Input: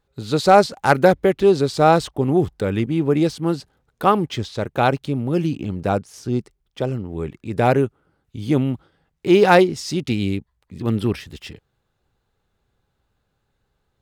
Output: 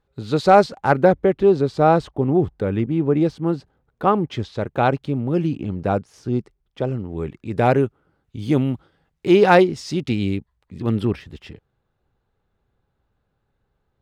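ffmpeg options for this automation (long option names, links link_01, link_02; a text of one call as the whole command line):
ffmpeg -i in.wav -af "asetnsamples=nb_out_samples=441:pad=0,asendcmd='0.78 lowpass f 1300;4.31 lowpass f 2200;6.99 lowpass f 4200;8.39 lowpass f 8300;9.33 lowpass f 3900;11.05 lowpass f 1700',lowpass=frequency=2900:poles=1" out.wav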